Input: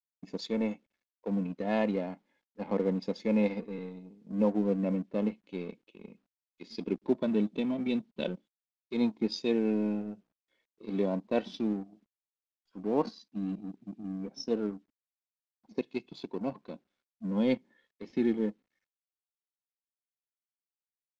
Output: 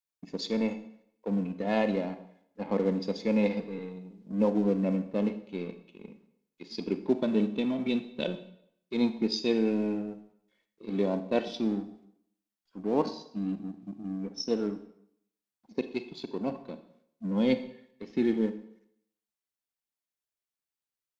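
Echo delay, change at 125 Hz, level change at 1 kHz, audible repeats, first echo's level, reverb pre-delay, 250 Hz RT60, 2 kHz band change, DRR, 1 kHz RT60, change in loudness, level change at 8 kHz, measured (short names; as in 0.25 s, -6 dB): none, +1.5 dB, +2.0 dB, none, none, 30 ms, 0.65 s, +3.0 dB, 10.0 dB, 0.70 s, +2.0 dB, n/a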